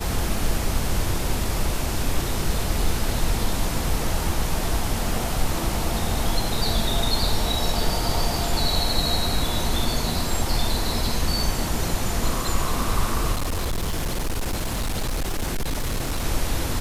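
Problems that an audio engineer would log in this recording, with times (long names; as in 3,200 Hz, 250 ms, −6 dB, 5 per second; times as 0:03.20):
0:13.32–0:16.24: clipping −21 dBFS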